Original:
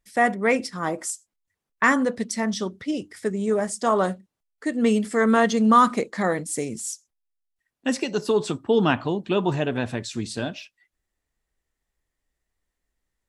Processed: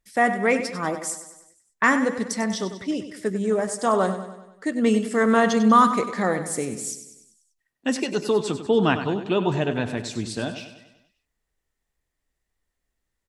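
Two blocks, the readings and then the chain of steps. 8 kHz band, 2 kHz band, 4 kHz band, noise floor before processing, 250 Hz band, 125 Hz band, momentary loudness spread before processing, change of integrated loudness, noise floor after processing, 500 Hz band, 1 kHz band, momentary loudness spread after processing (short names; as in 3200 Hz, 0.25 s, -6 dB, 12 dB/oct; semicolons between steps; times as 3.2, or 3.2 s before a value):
+0.5 dB, +0.5 dB, +0.5 dB, -84 dBFS, +0.5 dB, +0.5 dB, 12 LU, +0.5 dB, -81 dBFS, +0.5 dB, +0.5 dB, 12 LU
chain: feedback echo 97 ms, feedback 53%, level -11 dB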